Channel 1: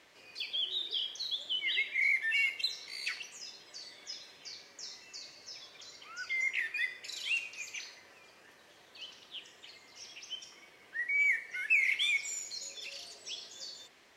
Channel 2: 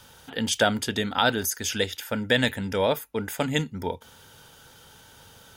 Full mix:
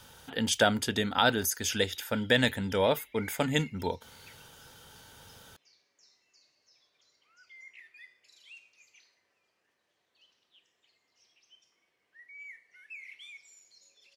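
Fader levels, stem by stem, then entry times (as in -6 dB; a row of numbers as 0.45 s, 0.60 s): -18.5 dB, -2.5 dB; 1.20 s, 0.00 s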